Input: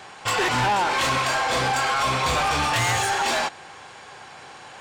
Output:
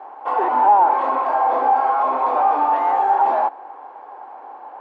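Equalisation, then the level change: elliptic high-pass 270 Hz, stop band 60 dB; synth low-pass 870 Hz, resonance Q 3.4; 0.0 dB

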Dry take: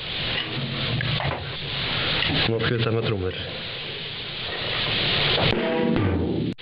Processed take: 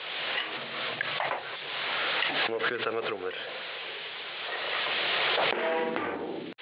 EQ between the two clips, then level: HPF 600 Hz 12 dB/oct; LPF 2300 Hz 12 dB/oct; 0.0 dB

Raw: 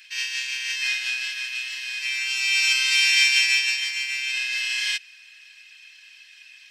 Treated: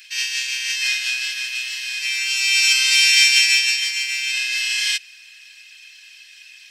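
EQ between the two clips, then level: high shelf 3600 Hz +10 dB; 0.0 dB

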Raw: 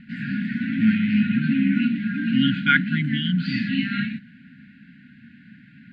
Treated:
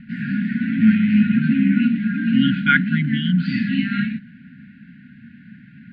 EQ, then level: high shelf 2300 Hz -10.5 dB; dynamic EQ 120 Hz, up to -6 dB, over -42 dBFS, Q 2.8; band shelf 520 Hz -10.5 dB; +5.5 dB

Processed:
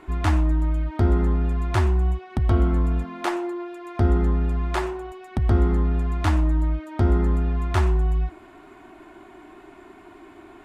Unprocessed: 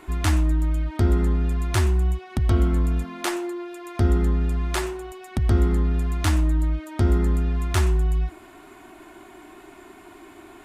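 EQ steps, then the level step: LPF 2400 Hz 6 dB/oct; dynamic EQ 840 Hz, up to +5 dB, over -42 dBFS, Q 1.1; 0.0 dB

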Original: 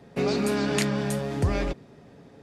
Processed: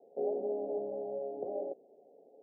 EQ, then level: ladder high-pass 380 Hz, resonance 40%; Chebyshev low-pass 780 Hz, order 6; 0.0 dB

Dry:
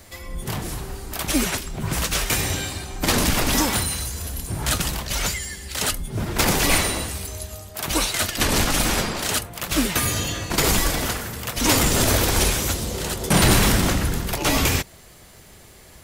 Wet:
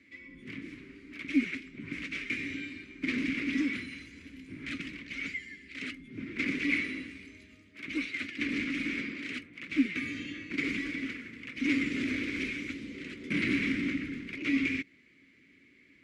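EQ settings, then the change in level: dynamic EQ 870 Hz, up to -8 dB, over -45 dBFS, Q 5; double band-pass 780 Hz, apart 3 oct; air absorption 63 m; 0.0 dB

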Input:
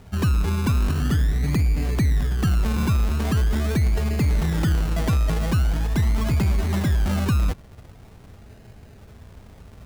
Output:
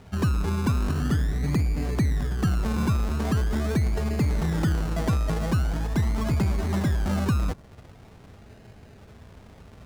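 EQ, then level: high shelf 10000 Hz -9 dB; dynamic EQ 2800 Hz, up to -5 dB, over -48 dBFS, Q 0.99; low shelf 83 Hz -7.5 dB; 0.0 dB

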